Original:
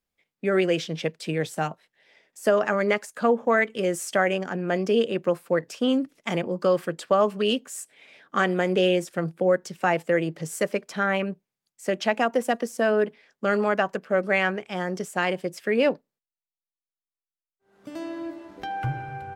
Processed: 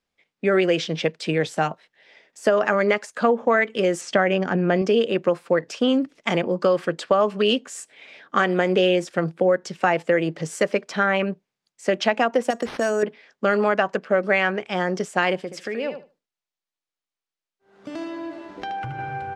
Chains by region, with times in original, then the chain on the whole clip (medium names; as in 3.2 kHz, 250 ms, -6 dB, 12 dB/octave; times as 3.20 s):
4.01–4.82 s: low-pass 5.8 kHz + bass shelf 200 Hz +10 dB
12.50–13.03 s: careless resampling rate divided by 6×, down none, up hold + compression 3:1, threshold -25 dBFS
15.39–18.99 s: compression 3:1, threshold -34 dBFS + feedback delay 76 ms, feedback 17%, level -9 dB
whole clip: low-pass 6.1 kHz 12 dB/octave; bass shelf 150 Hz -7 dB; compression 3:1, threshold -22 dBFS; trim +6.5 dB